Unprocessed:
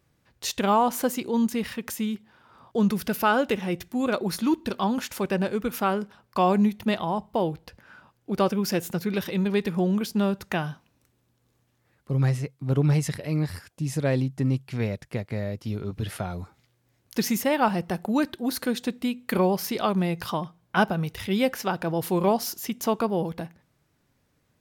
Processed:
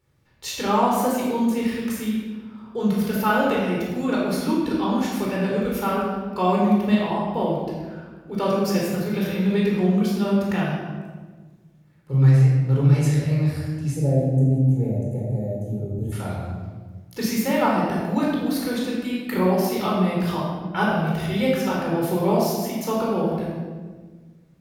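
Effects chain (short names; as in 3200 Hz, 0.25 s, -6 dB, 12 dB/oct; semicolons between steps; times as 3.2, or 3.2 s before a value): spectral gain 13.92–16.12, 880–6000 Hz -22 dB; shoebox room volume 1300 m³, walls mixed, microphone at 4.3 m; gain -6 dB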